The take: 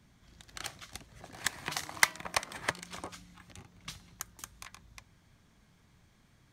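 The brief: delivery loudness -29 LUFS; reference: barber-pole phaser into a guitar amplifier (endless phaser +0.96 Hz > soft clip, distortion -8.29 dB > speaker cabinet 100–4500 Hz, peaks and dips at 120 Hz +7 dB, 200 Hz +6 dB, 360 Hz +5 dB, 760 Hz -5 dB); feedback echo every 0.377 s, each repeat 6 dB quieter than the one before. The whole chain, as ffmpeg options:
-filter_complex "[0:a]aecho=1:1:377|754|1131|1508|1885|2262:0.501|0.251|0.125|0.0626|0.0313|0.0157,asplit=2[a][b];[b]afreqshift=0.96[c];[a][c]amix=inputs=2:normalize=1,asoftclip=threshold=-18.5dB,highpass=100,equalizer=f=120:t=q:w=4:g=7,equalizer=f=200:t=q:w=4:g=6,equalizer=f=360:t=q:w=4:g=5,equalizer=f=760:t=q:w=4:g=-5,lowpass=f=4.5k:w=0.5412,lowpass=f=4.5k:w=1.3066,volume=13dB"

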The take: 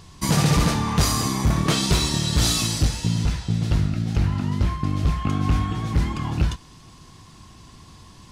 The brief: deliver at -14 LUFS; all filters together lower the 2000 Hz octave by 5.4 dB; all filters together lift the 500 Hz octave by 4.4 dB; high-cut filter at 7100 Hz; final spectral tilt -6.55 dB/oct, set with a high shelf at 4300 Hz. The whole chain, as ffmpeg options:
-af "lowpass=7.1k,equalizer=f=500:t=o:g=6,equalizer=f=2k:t=o:g=-5.5,highshelf=f=4.3k:g=-7.5,volume=8.5dB"

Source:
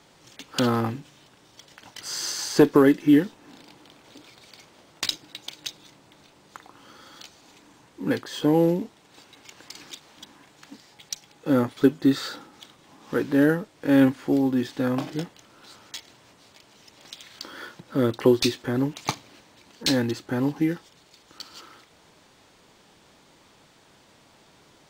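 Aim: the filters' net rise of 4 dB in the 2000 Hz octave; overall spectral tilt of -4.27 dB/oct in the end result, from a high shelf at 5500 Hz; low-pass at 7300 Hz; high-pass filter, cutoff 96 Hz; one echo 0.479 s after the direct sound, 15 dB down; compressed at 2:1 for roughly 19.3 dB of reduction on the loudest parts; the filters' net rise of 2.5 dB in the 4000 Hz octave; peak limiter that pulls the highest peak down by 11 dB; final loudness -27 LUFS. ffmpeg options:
-af "highpass=96,lowpass=7.3k,equalizer=f=2k:t=o:g=5,equalizer=f=4k:t=o:g=4.5,highshelf=f=5.5k:g=-6,acompressor=threshold=-49dB:ratio=2,alimiter=level_in=6dB:limit=-24dB:level=0:latency=1,volume=-6dB,aecho=1:1:479:0.178,volume=17.5dB"

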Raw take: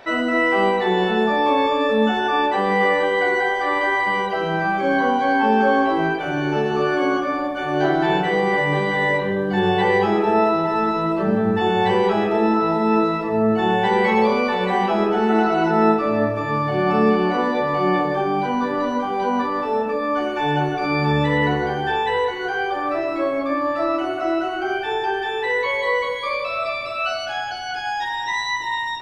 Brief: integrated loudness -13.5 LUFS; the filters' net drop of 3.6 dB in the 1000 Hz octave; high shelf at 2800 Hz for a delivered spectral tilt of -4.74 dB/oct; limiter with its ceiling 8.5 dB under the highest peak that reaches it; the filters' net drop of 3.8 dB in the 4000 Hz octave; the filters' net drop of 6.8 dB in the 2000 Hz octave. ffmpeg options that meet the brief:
-af "equalizer=f=1k:t=o:g=-3.5,equalizer=f=2k:t=o:g=-8,highshelf=f=2.8k:g=6.5,equalizer=f=4k:t=o:g=-6.5,volume=10.5dB,alimiter=limit=-4.5dB:level=0:latency=1"

